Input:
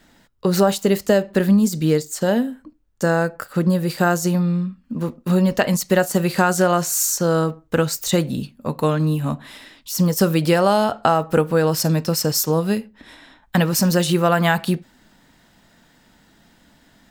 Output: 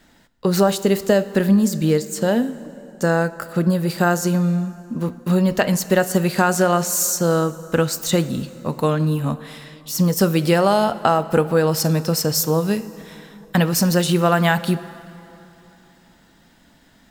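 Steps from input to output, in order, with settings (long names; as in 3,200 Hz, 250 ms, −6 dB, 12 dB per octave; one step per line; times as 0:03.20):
dense smooth reverb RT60 3.2 s, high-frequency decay 0.7×, DRR 15 dB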